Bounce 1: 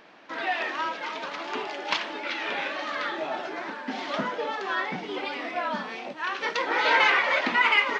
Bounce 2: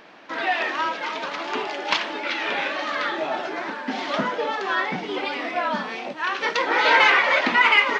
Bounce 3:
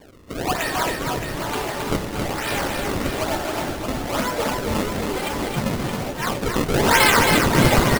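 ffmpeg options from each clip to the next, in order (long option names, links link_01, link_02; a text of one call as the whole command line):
ffmpeg -i in.wav -af "acontrast=21" out.wav
ffmpeg -i in.wav -af "acrusher=samples=32:mix=1:aa=0.000001:lfo=1:lforange=51.2:lforate=1.1,aecho=1:1:270|621|1077|1670|2442:0.631|0.398|0.251|0.158|0.1" out.wav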